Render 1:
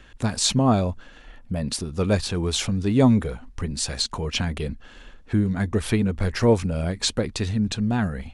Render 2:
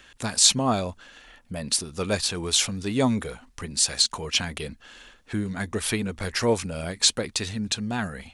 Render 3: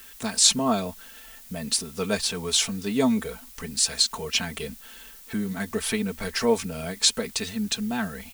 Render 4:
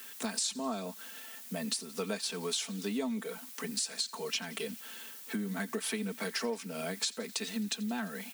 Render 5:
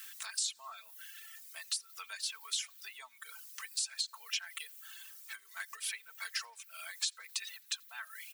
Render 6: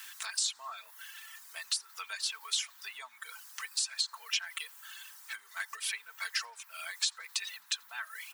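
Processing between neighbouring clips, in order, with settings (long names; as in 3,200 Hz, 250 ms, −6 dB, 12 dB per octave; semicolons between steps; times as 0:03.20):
spectral tilt +2.5 dB per octave; level −1 dB
comb filter 4.5 ms, depth 73%; background noise blue −45 dBFS; level −2.5 dB
Butterworth high-pass 180 Hz 48 dB per octave; downward compressor 6 to 1, threshold −31 dBFS, peak gain reduction 16.5 dB; delay with a high-pass on its return 87 ms, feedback 75%, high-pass 1,800 Hz, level −21 dB; level −1 dB
reverb reduction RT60 1.4 s; high-pass filter 1,200 Hz 24 dB per octave; level −1 dB
high-shelf EQ 9,700 Hz −7.5 dB; noise in a band 870–1,900 Hz −71 dBFS; level +5 dB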